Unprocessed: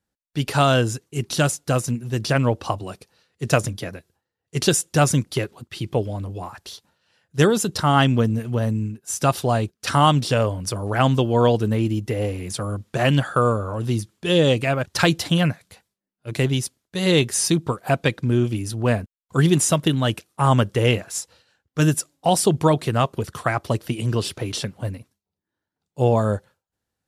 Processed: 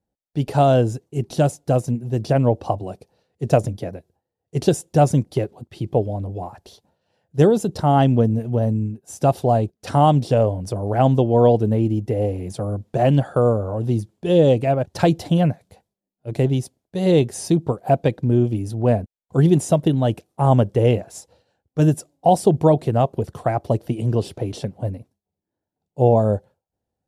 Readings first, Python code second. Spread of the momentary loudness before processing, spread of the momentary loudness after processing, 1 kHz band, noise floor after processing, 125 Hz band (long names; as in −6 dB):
12 LU, 12 LU, +1.0 dB, −85 dBFS, +2.0 dB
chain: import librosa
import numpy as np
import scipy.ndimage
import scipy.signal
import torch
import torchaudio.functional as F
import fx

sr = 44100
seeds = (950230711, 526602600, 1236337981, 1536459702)

y = fx.curve_eq(x, sr, hz=(310.0, 750.0, 1200.0), db=(0, 3, -12))
y = y * librosa.db_to_amplitude(2.0)